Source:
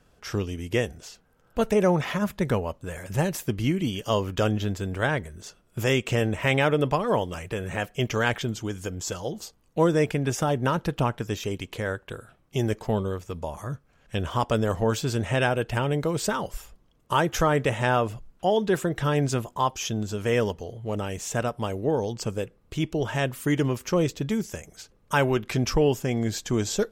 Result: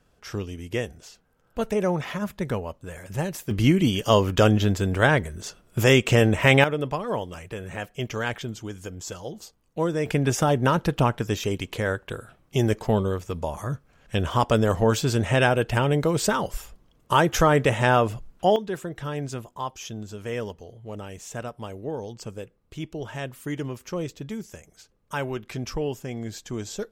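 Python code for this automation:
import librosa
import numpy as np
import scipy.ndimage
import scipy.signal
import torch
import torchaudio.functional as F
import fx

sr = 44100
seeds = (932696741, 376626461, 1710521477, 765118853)

y = fx.gain(x, sr, db=fx.steps((0.0, -3.0), (3.51, 6.0), (6.64, -4.0), (10.06, 3.5), (18.56, -7.0)))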